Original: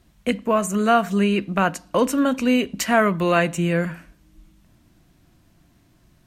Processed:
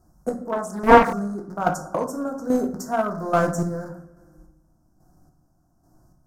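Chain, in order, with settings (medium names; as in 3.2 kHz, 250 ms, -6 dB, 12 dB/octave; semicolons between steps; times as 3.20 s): rattle on loud lows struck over -26 dBFS, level -16 dBFS; elliptic band-stop 1.4–5.4 kHz, stop band 70 dB; peaking EQ 750 Hz +8.5 dB 0.39 oct; on a send: feedback echo behind a low-pass 66 ms, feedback 75%, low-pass 4 kHz, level -22 dB; on the sum: square tremolo 1.2 Hz, depth 60%, duty 35%; simulated room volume 110 m³, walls mixed, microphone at 0.6 m; in parallel at -8 dB: crossover distortion -17.5 dBFS; on the sum: dynamic bell 3.1 kHz, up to +4 dB, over -35 dBFS, Q 0.9; 0.52–1.13 s: loudspeaker Doppler distortion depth 0.7 ms; trim -3 dB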